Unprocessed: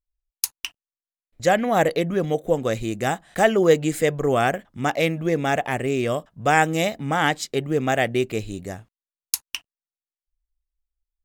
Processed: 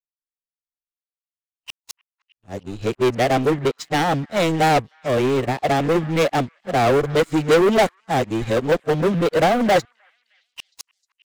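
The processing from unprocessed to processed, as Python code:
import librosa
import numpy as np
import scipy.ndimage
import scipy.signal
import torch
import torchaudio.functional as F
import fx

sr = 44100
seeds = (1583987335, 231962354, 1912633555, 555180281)

y = np.flip(x).copy()
y = scipy.signal.sosfilt(scipy.signal.bessel(2, 5000.0, 'lowpass', norm='mag', fs=sr, output='sos'), y)
y = fx.peak_eq(y, sr, hz=1600.0, db=-8.0, octaves=0.56)
y = fx.leveller(y, sr, passes=5)
y = fx.echo_stepped(y, sr, ms=309, hz=1500.0, octaves=0.7, feedback_pct=70, wet_db=-9.0)
y = fx.upward_expand(y, sr, threshold_db=-22.0, expansion=2.5)
y = y * 10.0 ** (-4.5 / 20.0)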